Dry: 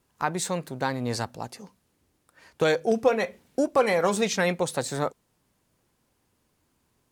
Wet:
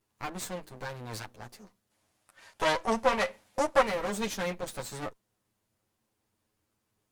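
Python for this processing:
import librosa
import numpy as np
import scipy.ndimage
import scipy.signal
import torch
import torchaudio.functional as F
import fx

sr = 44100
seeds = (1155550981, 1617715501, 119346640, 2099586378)

y = fx.lower_of_two(x, sr, delay_ms=9.4)
y = fx.spec_box(y, sr, start_s=1.91, length_s=1.91, low_hz=530.0, high_hz=12000.0, gain_db=8)
y = y * 10.0 ** (-6.5 / 20.0)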